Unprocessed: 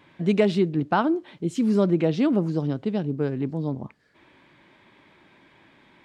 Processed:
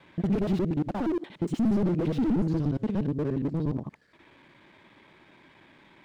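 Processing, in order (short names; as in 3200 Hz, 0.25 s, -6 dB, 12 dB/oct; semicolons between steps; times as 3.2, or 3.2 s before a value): local time reversal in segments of 59 ms; slew limiter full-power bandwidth 20 Hz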